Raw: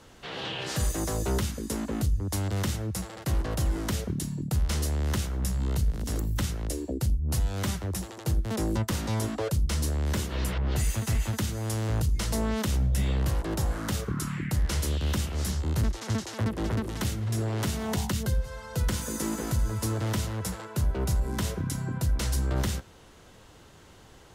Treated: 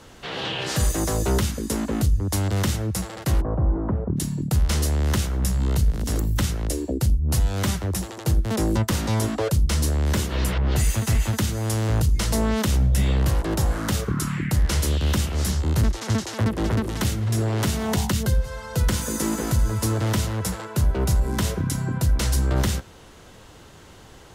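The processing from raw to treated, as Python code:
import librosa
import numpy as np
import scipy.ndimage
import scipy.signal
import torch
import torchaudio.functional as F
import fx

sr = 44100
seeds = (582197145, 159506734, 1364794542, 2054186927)

y = fx.lowpass(x, sr, hz=1100.0, slope=24, at=(3.4, 4.16), fade=0.02)
y = y * 10.0 ** (6.0 / 20.0)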